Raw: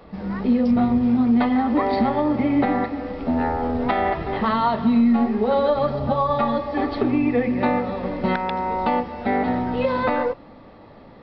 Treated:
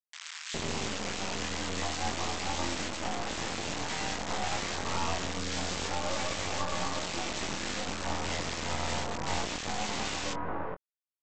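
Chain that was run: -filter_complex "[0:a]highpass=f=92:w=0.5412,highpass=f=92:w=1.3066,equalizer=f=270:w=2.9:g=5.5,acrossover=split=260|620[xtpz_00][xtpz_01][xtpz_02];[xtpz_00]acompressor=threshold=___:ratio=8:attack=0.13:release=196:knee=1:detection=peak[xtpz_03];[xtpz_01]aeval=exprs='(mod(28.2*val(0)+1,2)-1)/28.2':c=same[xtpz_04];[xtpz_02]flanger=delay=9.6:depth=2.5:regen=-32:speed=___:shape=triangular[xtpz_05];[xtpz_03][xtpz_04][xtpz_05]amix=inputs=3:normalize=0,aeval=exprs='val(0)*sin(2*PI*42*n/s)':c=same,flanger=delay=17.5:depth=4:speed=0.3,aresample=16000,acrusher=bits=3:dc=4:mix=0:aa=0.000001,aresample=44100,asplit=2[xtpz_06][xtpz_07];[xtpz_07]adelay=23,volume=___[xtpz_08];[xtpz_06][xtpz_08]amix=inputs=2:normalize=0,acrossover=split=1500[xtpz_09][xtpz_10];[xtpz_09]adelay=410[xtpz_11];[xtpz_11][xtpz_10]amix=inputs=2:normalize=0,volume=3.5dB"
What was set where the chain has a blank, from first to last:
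-32dB, 1.9, -10dB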